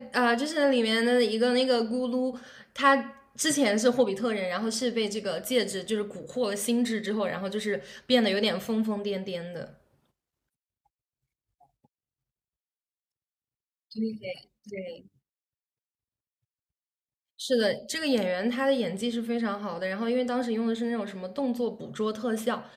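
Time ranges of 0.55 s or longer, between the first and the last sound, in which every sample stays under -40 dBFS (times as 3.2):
9.7–13.92
14.98–17.39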